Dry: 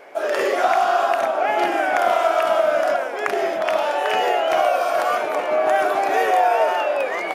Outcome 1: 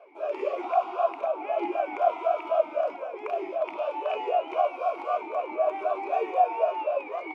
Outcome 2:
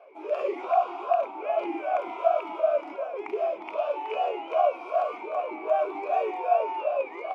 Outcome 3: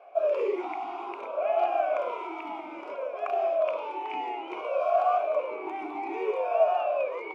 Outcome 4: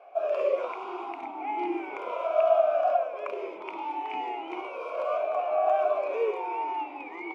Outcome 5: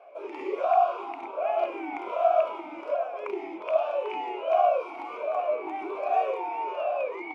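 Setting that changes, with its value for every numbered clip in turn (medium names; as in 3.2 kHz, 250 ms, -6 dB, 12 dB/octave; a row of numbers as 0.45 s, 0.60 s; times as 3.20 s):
talking filter, rate: 3.9 Hz, 2.6 Hz, 0.59 Hz, 0.36 Hz, 1.3 Hz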